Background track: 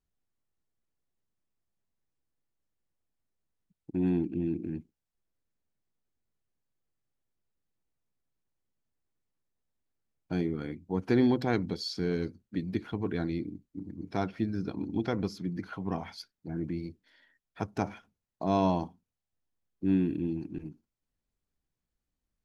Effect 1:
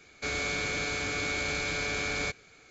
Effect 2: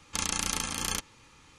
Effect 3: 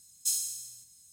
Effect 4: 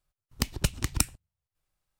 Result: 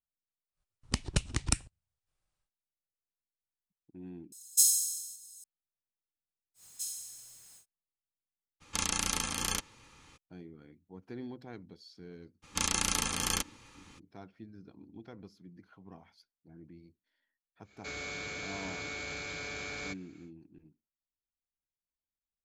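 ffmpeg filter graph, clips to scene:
-filter_complex "[3:a]asplit=2[a][b];[2:a]asplit=2[c][d];[0:a]volume=-18.5dB[e];[4:a]aresample=22050,aresample=44100[f];[a]aexciter=amount=7.6:drive=3.6:freq=2.9k[g];[b]aeval=exprs='val(0)+0.5*0.00794*sgn(val(0))':c=same[h];[1:a]highpass=55[i];[e]asplit=2[j][k];[j]atrim=end=4.324[l];[g]atrim=end=1.12,asetpts=PTS-STARTPTS,volume=-13.5dB[m];[k]atrim=start=5.436[n];[f]atrim=end=1.99,asetpts=PTS-STARTPTS,volume=-3dB,afade=t=in:d=0.1,afade=t=out:st=1.89:d=0.1,adelay=520[o];[h]atrim=end=1.12,asetpts=PTS-STARTPTS,volume=-10dB,afade=t=in:d=0.1,afade=t=out:st=1.02:d=0.1,adelay=6540[p];[c]atrim=end=1.58,asetpts=PTS-STARTPTS,volume=-1.5dB,afade=t=in:d=0.02,afade=t=out:st=1.56:d=0.02,adelay=8600[q];[d]atrim=end=1.58,asetpts=PTS-STARTPTS,afade=t=in:d=0.02,afade=t=out:st=1.56:d=0.02,adelay=12420[r];[i]atrim=end=2.7,asetpts=PTS-STARTPTS,volume=-8.5dB,afade=t=in:d=0.1,afade=t=out:st=2.6:d=0.1,adelay=17620[s];[l][m]acrossfade=d=0.004:c1=hsin:c2=hsin[t];[t][n]acrossfade=d=0.004:c1=hsin:c2=hsin[u];[u][o][p][q][r][s]amix=inputs=6:normalize=0"

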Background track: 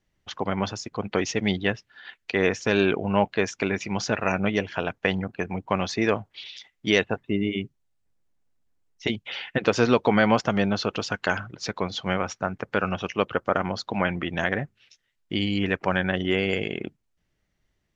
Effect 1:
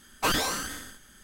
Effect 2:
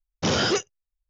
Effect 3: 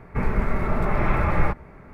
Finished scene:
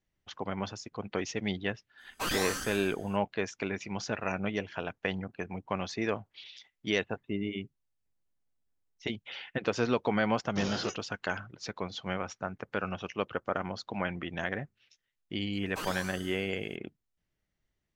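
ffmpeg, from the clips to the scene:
-filter_complex "[1:a]asplit=2[a][b];[0:a]volume=-8.5dB[c];[a]dynaudnorm=f=120:g=5:m=10dB,atrim=end=1.23,asetpts=PTS-STARTPTS,volume=-13.5dB,afade=t=in:d=0.05,afade=t=out:st=1.18:d=0.05,adelay=1970[d];[2:a]atrim=end=1.09,asetpts=PTS-STARTPTS,volume=-14dB,afade=t=in:d=0.004:c=hsin,afade=t=out:st=1.086:d=0.004:c=hsin,adelay=10330[e];[b]atrim=end=1.23,asetpts=PTS-STARTPTS,volume=-13.5dB,afade=t=in:d=0.004:c=hsin,afade=t=out:st=1.226:d=0.004:c=hsin,adelay=15530[f];[c][d][e][f]amix=inputs=4:normalize=0"

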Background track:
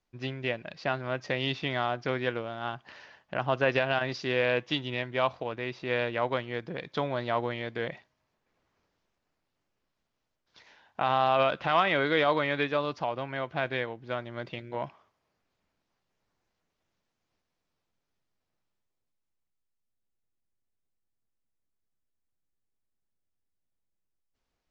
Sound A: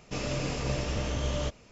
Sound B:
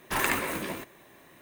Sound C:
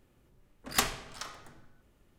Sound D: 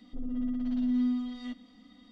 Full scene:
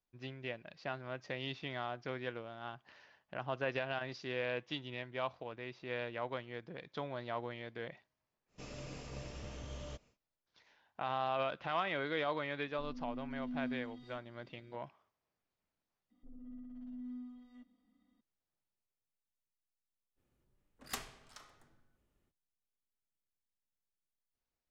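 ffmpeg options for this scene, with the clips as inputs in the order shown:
-filter_complex "[4:a]asplit=2[a][b];[0:a]volume=-11dB[c];[b]equalizer=f=4.2k:t=o:w=1.4:g=-11[d];[c]asplit=2[e][f];[e]atrim=end=16.104[g];[d]atrim=end=2.11,asetpts=PTS-STARTPTS,volume=-18dB[h];[f]atrim=start=18.206[i];[1:a]atrim=end=1.71,asetpts=PTS-STARTPTS,volume=-15.5dB,afade=t=in:d=0.1,afade=t=out:st=1.61:d=0.1,adelay=8470[j];[a]atrim=end=2.11,asetpts=PTS-STARTPTS,volume=-13dB,afade=t=in:d=0.004:c=hsin,afade=t=out:st=2.106:d=0.004:c=hsin,adelay=12650[k];[3:a]atrim=end=2.18,asetpts=PTS-STARTPTS,volume=-14dB,afade=t=in:d=0.05,afade=t=out:st=2.13:d=0.05,adelay=20150[l];[g][h]acrossfade=d=0.004:c1=hsin:c2=hsin[m];[m][i]acrossfade=d=0.004:c1=hsin:c2=hsin[n];[n][j][k][l]amix=inputs=4:normalize=0"

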